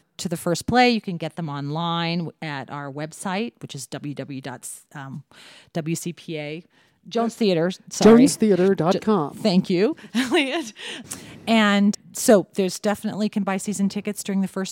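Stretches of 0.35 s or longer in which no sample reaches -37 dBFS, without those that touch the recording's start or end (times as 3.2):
6.6–7.08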